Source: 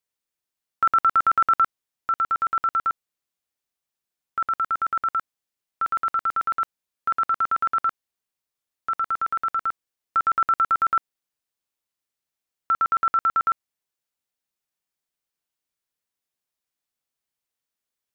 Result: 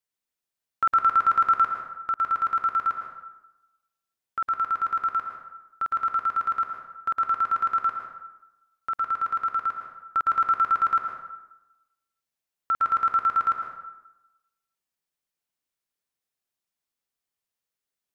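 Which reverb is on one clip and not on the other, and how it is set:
dense smooth reverb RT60 1 s, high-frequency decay 0.65×, pre-delay 100 ms, DRR 3.5 dB
level −3 dB

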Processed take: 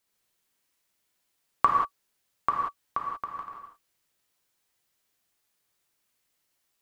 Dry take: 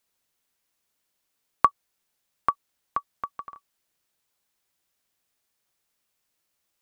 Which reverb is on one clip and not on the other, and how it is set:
reverb whose tail is shaped and stops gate 210 ms flat, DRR −1.5 dB
level −2.5 dB

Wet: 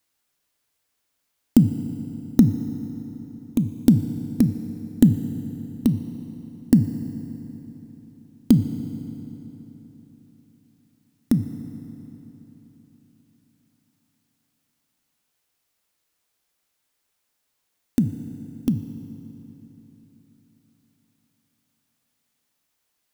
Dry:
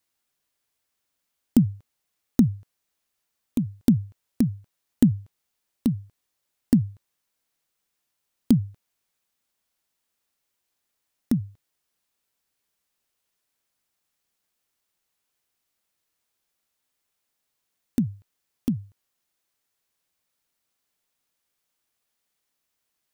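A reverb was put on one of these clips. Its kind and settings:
feedback delay network reverb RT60 3.9 s, high-frequency decay 0.7×, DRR 9 dB
level +3.5 dB

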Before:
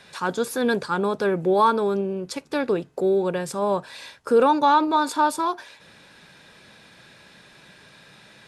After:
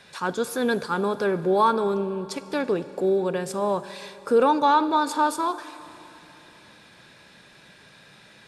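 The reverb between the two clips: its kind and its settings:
four-comb reverb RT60 3.3 s, combs from 32 ms, DRR 14 dB
level −1.5 dB

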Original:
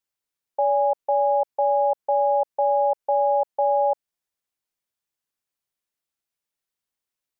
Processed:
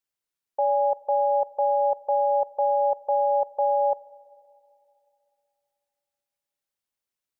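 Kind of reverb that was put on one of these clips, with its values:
four-comb reverb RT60 2.8 s, combs from 27 ms, DRR 17.5 dB
level −2 dB

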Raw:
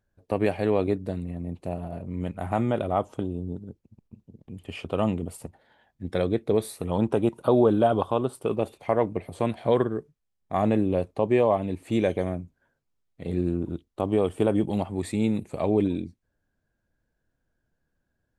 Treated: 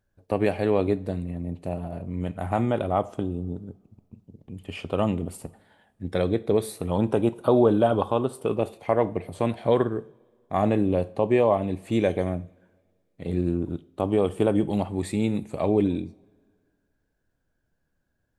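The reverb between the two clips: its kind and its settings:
coupled-rooms reverb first 0.46 s, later 2 s, from −20 dB, DRR 14.5 dB
level +1 dB

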